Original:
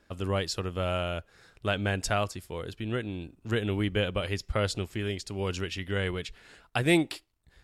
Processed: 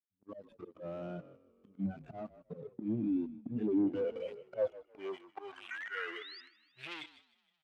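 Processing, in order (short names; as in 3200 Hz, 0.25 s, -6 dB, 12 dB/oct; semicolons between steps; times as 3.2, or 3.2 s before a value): median-filter separation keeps harmonic; spectral noise reduction 27 dB; sample leveller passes 5; painted sound rise, 5.71–6.4, 1400–5000 Hz -40 dBFS; vibrato 0.94 Hz 84 cents; auto swell 0.311 s; limiter -27.5 dBFS, peak gain reduction 12 dB; frequency-shifting echo 0.156 s, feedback 63%, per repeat -40 Hz, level -16 dB; gate -46 dBFS, range -7 dB; band-pass sweep 240 Hz -> 3300 Hz, 3.42–7.15; gain +3.5 dB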